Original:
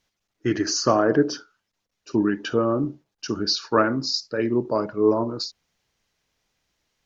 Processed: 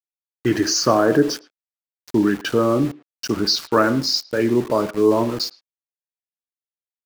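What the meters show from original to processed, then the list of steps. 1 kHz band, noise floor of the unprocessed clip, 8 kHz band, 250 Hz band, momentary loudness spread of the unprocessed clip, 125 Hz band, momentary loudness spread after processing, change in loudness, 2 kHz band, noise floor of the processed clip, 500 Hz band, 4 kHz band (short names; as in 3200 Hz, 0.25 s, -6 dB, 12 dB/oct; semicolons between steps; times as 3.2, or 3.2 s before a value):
+3.0 dB, -80 dBFS, n/a, +4.0 dB, 11 LU, +4.0 dB, 10 LU, +4.0 dB, +4.0 dB, under -85 dBFS, +3.5 dB, +4.5 dB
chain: in parallel at -1 dB: limiter -16.5 dBFS, peak gain reduction 11.5 dB; on the sum: sample gate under -30 dBFS; speakerphone echo 0.11 s, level -19 dB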